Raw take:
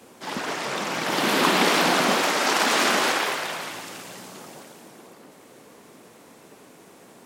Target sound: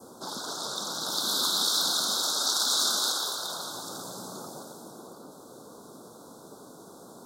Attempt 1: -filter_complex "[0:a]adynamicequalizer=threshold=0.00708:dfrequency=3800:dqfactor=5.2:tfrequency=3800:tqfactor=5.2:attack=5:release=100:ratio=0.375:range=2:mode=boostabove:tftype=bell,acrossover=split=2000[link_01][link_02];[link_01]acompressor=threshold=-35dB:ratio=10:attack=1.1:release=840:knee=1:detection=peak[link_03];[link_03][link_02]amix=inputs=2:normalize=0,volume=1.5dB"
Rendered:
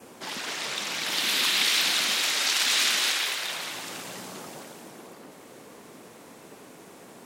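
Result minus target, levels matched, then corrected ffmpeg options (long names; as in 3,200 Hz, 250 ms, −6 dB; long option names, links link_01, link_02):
2,000 Hz band +11.5 dB
-filter_complex "[0:a]adynamicequalizer=threshold=0.00708:dfrequency=3800:dqfactor=5.2:tfrequency=3800:tqfactor=5.2:attack=5:release=100:ratio=0.375:range=2:mode=boostabove:tftype=bell,asuperstop=centerf=2300:order=12:qfactor=1.1,acrossover=split=2000[link_01][link_02];[link_01]acompressor=threshold=-35dB:ratio=10:attack=1.1:release=840:knee=1:detection=peak[link_03];[link_03][link_02]amix=inputs=2:normalize=0,volume=1.5dB"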